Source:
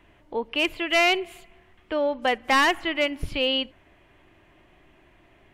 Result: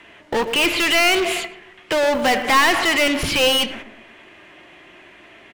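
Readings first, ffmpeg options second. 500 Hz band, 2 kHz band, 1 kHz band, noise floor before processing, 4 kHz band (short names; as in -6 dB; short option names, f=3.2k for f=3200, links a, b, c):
+6.0 dB, +6.5 dB, +5.5 dB, -58 dBFS, +7.5 dB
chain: -filter_complex "[0:a]lowpass=11k,agate=range=-11dB:threshold=-48dB:ratio=16:detection=peak,asplit=2[a][b];[b]highpass=f=720:p=1,volume=32dB,asoftclip=type=tanh:threshold=-14dB[c];[a][c]amix=inputs=2:normalize=0,lowpass=f=7.3k:p=1,volume=-6dB,asplit=2[d][e];[e]adelay=114,lowpass=f=830:p=1,volume=-9dB,asplit=2[f][g];[g]adelay=114,lowpass=f=830:p=1,volume=0.46,asplit=2[h][i];[i]adelay=114,lowpass=f=830:p=1,volume=0.46,asplit=2[j][k];[k]adelay=114,lowpass=f=830:p=1,volume=0.46,asplit=2[l][m];[m]adelay=114,lowpass=f=830:p=1,volume=0.46[n];[d][f][h][j][l][n]amix=inputs=6:normalize=0,flanger=delay=4.4:depth=1.4:regen=82:speed=0.73:shape=sinusoidal,acrossover=split=750|1000[o][p][q];[p]aeval=exprs='val(0)*gte(abs(val(0)),0.00841)':c=same[r];[o][r][q]amix=inputs=3:normalize=0,volume=6.5dB"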